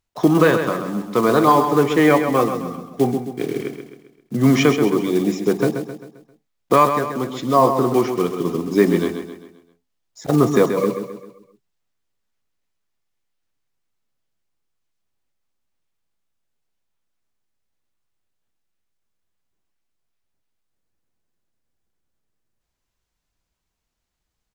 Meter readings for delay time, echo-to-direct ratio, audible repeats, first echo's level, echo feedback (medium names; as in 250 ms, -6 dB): 132 ms, -7.0 dB, 4, -8.0 dB, 45%